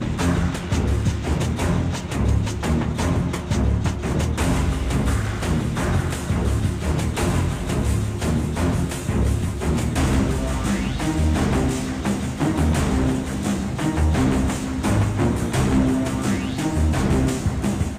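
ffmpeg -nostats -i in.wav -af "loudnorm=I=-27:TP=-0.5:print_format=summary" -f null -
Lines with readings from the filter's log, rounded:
Input Integrated:    -22.1 LUFS
Input True Peak:      -8.9 dBTP
Input LRA:             1.5 LU
Input Threshold:     -32.1 LUFS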